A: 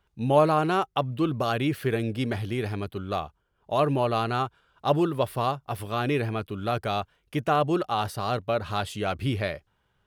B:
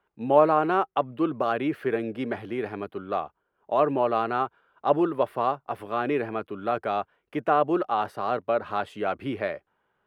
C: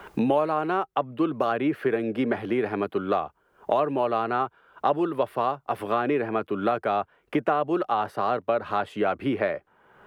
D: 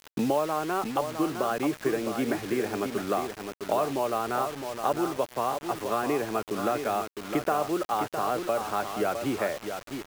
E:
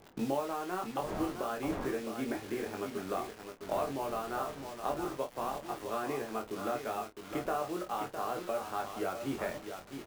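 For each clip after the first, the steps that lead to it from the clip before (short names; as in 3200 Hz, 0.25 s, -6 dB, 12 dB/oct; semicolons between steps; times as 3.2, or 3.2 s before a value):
three-band isolator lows -19 dB, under 220 Hz, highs -18 dB, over 2300 Hz; gain +2 dB
three-band squash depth 100%
feedback echo 0.66 s, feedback 21%, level -7.5 dB; bit-crush 6-bit; gain -3.5 dB
G.711 law mismatch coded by A; wind noise 630 Hz -43 dBFS; early reflections 22 ms -4 dB, 50 ms -12.5 dB; gain -8.5 dB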